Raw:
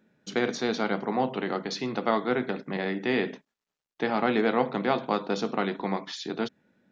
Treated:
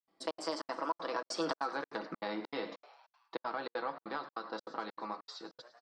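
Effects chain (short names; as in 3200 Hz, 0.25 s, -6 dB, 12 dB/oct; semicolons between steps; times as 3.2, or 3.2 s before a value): Doppler pass-by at 1.99, 32 m/s, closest 4.8 m; ten-band EQ 125 Hz -9 dB, 1000 Hz +10 dB, 2000 Hz -9 dB, 4000 Hz +10 dB; compressor 8:1, threshold -47 dBFS, peak gain reduction 30 dB; bell 5400 Hz -10 dB 0.51 oct; varispeed +19%; comb 6.1 ms, depth 58%; on a send: frequency-shifting echo 0.105 s, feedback 64%, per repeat +110 Hz, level -17 dB; on the sum: step gate ".xxx.xxx" 196 bpm -60 dB; gain +13.5 dB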